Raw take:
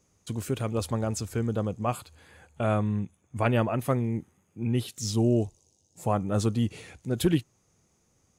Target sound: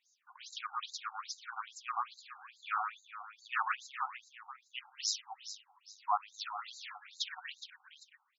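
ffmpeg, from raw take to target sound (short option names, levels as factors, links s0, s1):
-af "highpass=f=630:w=0.5412,highpass=f=630:w=1.3066,aecho=1:1:120|258|416.7|599.2|809.1:0.631|0.398|0.251|0.158|0.1,afftfilt=real='re*between(b*sr/1024,1000*pow(5400/1000,0.5+0.5*sin(2*PI*2.4*pts/sr))/1.41,1000*pow(5400/1000,0.5+0.5*sin(2*PI*2.4*pts/sr))*1.41)':imag='im*between(b*sr/1024,1000*pow(5400/1000,0.5+0.5*sin(2*PI*2.4*pts/sr))/1.41,1000*pow(5400/1000,0.5+0.5*sin(2*PI*2.4*pts/sr))*1.41)':win_size=1024:overlap=0.75,volume=1.26"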